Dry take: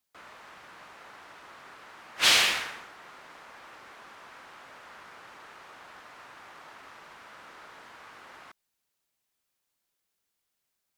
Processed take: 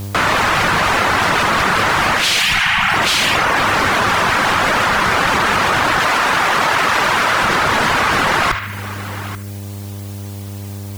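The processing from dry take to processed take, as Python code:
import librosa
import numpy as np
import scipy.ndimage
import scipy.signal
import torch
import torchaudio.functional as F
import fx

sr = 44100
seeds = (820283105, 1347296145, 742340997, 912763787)

p1 = fx.octave_divider(x, sr, octaves=1, level_db=3.0)
p2 = fx.dmg_buzz(p1, sr, base_hz=100.0, harmonics=12, level_db=-69.0, tilt_db=-9, odd_only=False)
p3 = p2 + fx.echo_single(p2, sr, ms=835, db=-22.0, dry=0)
p4 = fx.dereverb_blind(p3, sr, rt60_s=0.61)
p5 = fx.ellip_bandstop(p4, sr, low_hz=210.0, high_hz=730.0, order=3, stop_db=40, at=(2.39, 2.94))
p6 = fx.schmitt(p5, sr, flips_db=-30.0)
p7 = p5 + (p6 * 10.0 ** (-9.0 / 20.0))
p8 = fx.low_shelf(p7, sr, hz=200.0, db=-8.5, at=(5.99, 7.43))
p9 = fx.echo_banded(p8, sr, ms=74, feedback_pct=66, hz=2100.0, wet_db=-14.0)
p10 = fx.env_flatten(p9, sr, amount_pct=100)
y = p10 * 10.0 ** (3.5 / 20.0)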